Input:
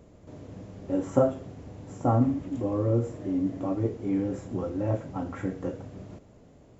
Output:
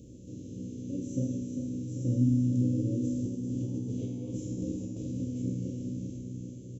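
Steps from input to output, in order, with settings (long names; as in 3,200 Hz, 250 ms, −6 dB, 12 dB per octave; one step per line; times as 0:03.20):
compressor on every frequency bin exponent 0.6
inverse Chebyshev band-stop filter 750–1,700 Hz, stop band 50 dB
0:03.98–0:04.31: gain on a spectral selection 370–4,000 Hz +8 dB
thirty-one-band graphic EQ 400 Hz −8 dB, 2,000 Hz −7 dB, 6,300 Hz +8 dB
0:03.04–0:05.11: compressor whose output falls as the input rises −29 dBFS, ratio −0.5
tuned comb filter 62 Hz, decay 1.6 s, harmonics all, mix 90%
repeating echo 395 ms, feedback 57%, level −8.5 dB
level +7 dB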